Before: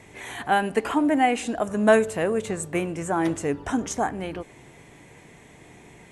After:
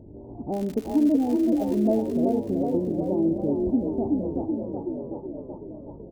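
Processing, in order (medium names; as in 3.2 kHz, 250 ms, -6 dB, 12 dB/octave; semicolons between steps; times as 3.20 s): Gaussian low-pass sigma 18 samples; 0.52–1.97 s: crackle 150 per s -34 dBFS; frequency-shifting echo 376 ms, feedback 57%, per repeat +31 Hz, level -4 dB; compression 1.5:1, threshold -38 dBFS, peak gain reduction 7 dB; comb 3.3 ms, depth 34%; trim +8 dB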